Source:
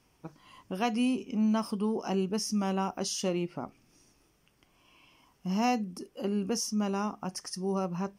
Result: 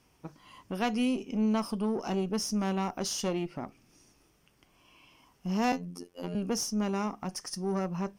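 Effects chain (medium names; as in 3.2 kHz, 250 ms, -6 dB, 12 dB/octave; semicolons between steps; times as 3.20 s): single-diode clipper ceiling -28 dBFS; 5.72–6.35 s: robot voice 87.7 Hz; trim +1.5 dB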